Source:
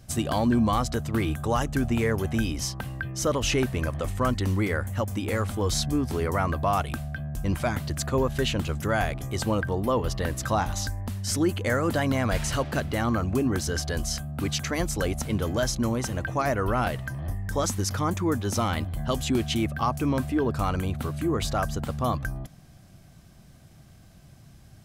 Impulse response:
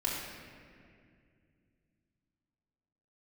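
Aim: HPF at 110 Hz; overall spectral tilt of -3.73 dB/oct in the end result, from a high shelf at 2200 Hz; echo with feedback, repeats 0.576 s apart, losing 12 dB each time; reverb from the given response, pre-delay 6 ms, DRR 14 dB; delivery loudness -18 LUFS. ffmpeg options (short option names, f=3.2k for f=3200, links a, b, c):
-filter_complex "[0:a]highpass=110,highshelf=f=2.2k:g=7,aecho=1:1:576|1152|1728:0.251|0.0628|0.0157,asplit=2[a][b];[1:a]atrim=start_sample=2205,adelay=6[c];[b][c]afir=irnorm=-1:irlink=0,volume=-20dB[d];[a][d]amix=inputs=2:normalize=0,volume=7.5dB"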